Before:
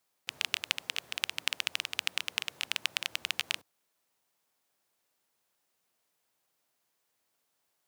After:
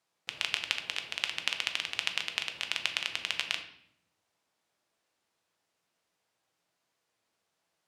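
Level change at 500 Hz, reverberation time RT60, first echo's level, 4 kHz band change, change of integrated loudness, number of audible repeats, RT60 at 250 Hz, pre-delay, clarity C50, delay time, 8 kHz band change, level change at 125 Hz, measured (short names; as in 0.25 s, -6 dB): +2.5 dB, 0.70 s, none, +1.0 dB, +1.0 dB, none, 1.1 s, 6 ms, 10.5 dB, none, -2.5 dB, +3.0 dB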